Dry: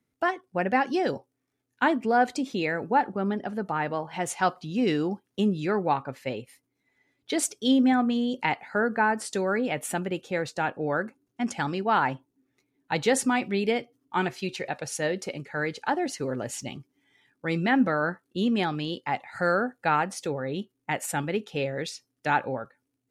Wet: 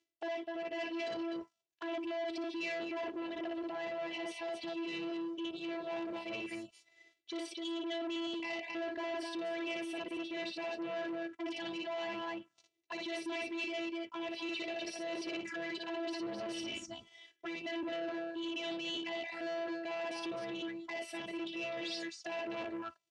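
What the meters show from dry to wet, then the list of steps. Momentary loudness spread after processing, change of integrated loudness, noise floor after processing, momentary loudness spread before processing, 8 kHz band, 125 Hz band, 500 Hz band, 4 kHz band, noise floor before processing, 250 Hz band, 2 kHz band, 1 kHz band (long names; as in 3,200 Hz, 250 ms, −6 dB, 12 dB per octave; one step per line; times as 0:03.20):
4 LU, −12.0 dB, −80 dBFS, 10 LU, −18.0 dB, −27.0 dB, −10.5 dB, −5.0 dB, −79 dBFS, −12.0 dB, −12.0 dB, −17.0 dB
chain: phases set to zero 333 Hz
on a send: loudspeakers that aren't time-aligned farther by 20 metres −5 dB, 87 metres −10 dB
on the sum: phaser swept by the level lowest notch 190 Hz, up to 1,300 Hz, full sweep at −33 dBFS
reversed playback
downward compressor 12 to 1, threshold −40 dBFS, peak gain reduction 18.5 dB
reversed playback
brickwall limiter −38 dBFS, peak gain reduction 8 dB
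leveller curve on the samples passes 2
loudspeaker in its box 120–7,000 Hz, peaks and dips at 170 Hz −4 dB, 250 Hz −3 dB, 2,900 Hz +6 dB
level +4 dB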